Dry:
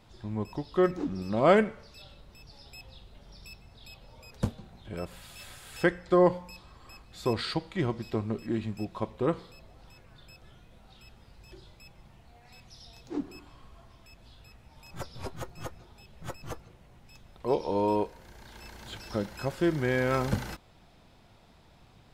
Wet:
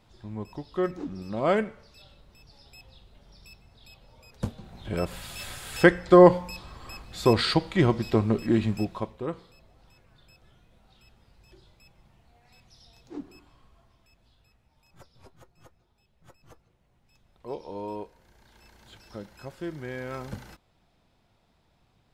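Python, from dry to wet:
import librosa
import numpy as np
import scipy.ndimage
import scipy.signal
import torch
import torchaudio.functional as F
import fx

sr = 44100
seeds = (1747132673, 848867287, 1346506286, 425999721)

y = fx.gain(x, sr, db=fx.line((4.38, -3.0), (4.87, 8.0), (8.77, 8.0), (9.23, -5.0), (13.32, -5.0), (15.4, -16.0), (16.25, -16.0), (17.49, -9.0)))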